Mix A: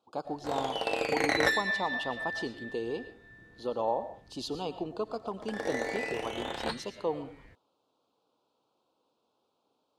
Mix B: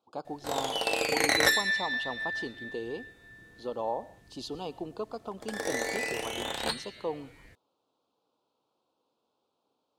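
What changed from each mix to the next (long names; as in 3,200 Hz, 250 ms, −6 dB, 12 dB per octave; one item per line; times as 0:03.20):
speech: send −10.0 dB
background: remove low-pass filter 2,000 Hz 6 dB per octave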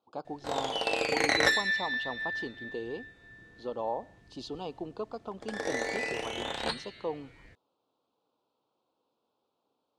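speech: send −7.0 dB
master: add high-frequency loss of the air 70 metres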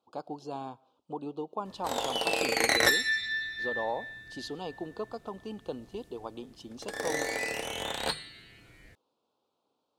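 background: entry +1.40 s
master: remove high-frequency loss of the air 70 metres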